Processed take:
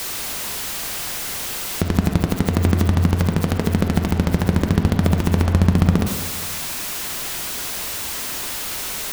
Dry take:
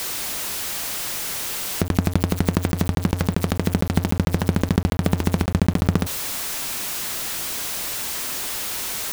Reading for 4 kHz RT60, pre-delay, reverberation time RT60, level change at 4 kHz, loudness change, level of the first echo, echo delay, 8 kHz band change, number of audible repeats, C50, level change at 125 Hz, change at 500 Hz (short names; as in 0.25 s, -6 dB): 1.4 s, 37 ms, 1.5 s, +1.0 dB, +2.0 dB, none, none, 0.0 dB, none, 5.0 dB, +4.0 dB, +1.5 dB